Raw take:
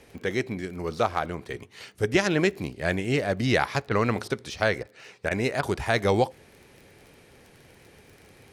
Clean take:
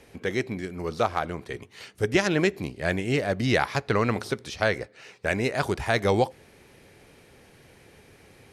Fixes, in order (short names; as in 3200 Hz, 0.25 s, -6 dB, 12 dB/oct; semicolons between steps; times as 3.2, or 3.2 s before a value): de-click; interpolate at 3.89/4.28/4.83/5.29/5.61, 19 ms